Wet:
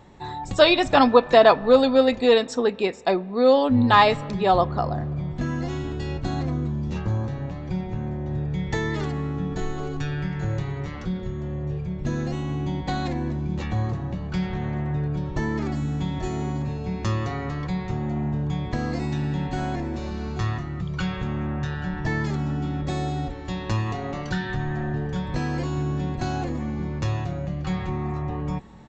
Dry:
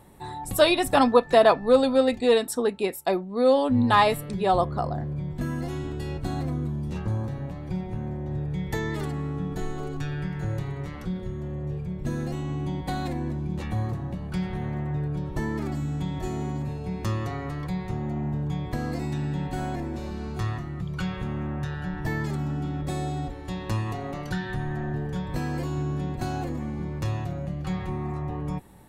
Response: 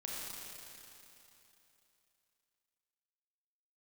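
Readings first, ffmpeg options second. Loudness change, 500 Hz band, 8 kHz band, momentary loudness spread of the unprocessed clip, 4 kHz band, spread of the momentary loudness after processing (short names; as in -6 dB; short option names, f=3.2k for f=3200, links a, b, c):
+3.0 dB, +3.0 dB, -3.0 dB, 12 LU, +4.5 dB, 13 LU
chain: -filter_complex "[0:a]equalizer=f=3.2k:w=0.41:g=2.5,aresample=16000,aresample=44100,asplit=2[a][b];[1:a]atrim=start_sample=2205,lowpass=2.3k[c];[b][c]afir=irnorm=-1:irlink=0,volume=-20.5dB[d];[a][d]amix=inputs=2:normalize=0,volume=2dB"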